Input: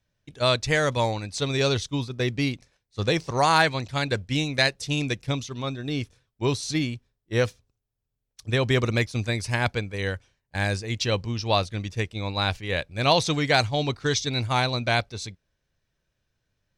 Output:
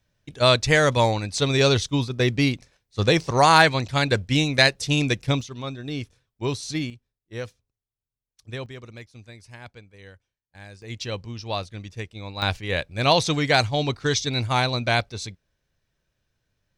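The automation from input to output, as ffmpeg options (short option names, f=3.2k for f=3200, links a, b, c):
-af "asetnsamples=n=441:p=0,asendcmd='5.41 volume volume -2dB;6.9 volume volume -10dB;8.66 volume volume -18dB;10.82 volume volume -6dB;12.42 volume volume 1.5dB',volume=4.5dB"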